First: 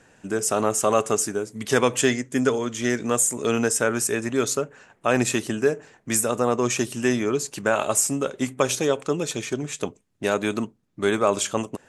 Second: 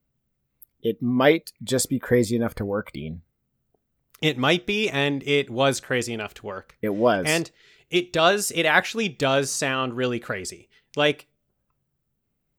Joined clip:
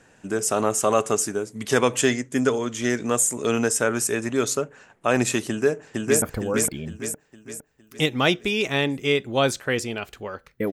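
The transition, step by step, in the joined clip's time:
first
5.48–6.22 echo throw 0.46 s, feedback 45%, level -1 dB
6.22 switch to second from 2.45 s

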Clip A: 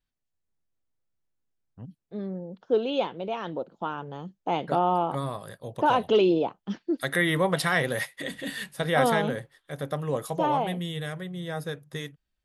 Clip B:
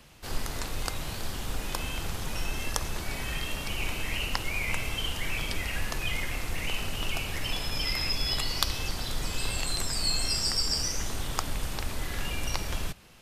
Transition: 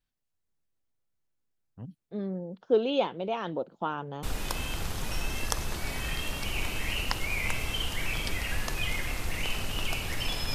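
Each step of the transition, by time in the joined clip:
clip A
4.23 switch to clip B from 1.47 s

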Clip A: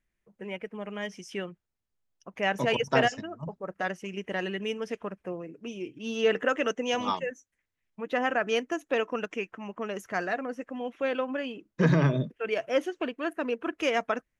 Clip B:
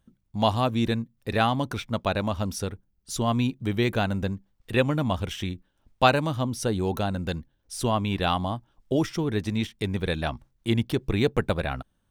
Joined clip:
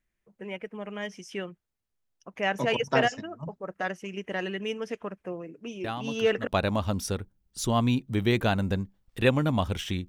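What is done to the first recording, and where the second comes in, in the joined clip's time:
clip A
5.84 add clip B from 1.36 s 0.63 s -11.5 dB
6.47 switch to clip B from 1.99 s

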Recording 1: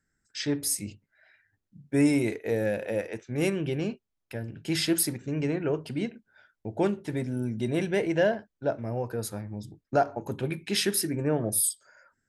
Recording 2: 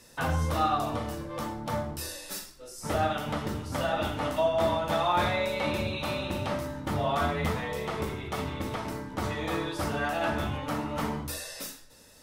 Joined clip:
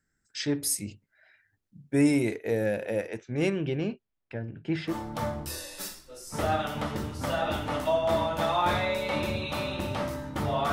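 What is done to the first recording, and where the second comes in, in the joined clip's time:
recording 1
3.16–4.96 LPF 7700 Hz -> 1600 Hz
4.91 switch to recording 2 from 1.42 s, crossfade 0.10 s

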